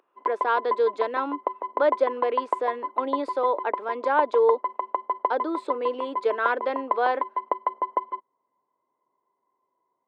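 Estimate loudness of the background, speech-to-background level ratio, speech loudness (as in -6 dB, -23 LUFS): -30.5 LUFS, 4.0 dB, -26.5 LUFS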